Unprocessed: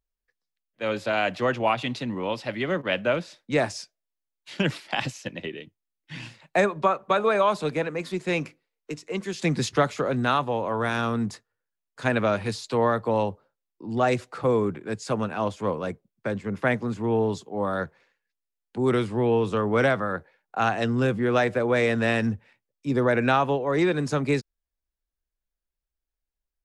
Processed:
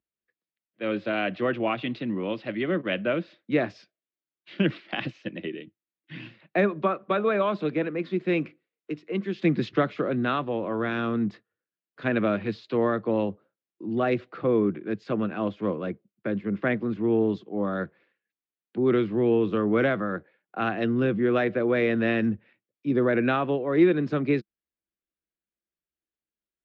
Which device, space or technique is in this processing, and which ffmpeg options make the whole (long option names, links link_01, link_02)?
guitar cabinet: -af "highpass=110,equalizer=frequency=200:width_type=q:width=4:gain=6,equalizer=frequency=330:width_type=q:width=4:gain=9,equalizer=frequency=890:width_type=q:width=4:gain=-9,lowpass=frequency=3500:width=0.5412,lowpass=frequency=3500:width=1.3066,volume=-2.5dB"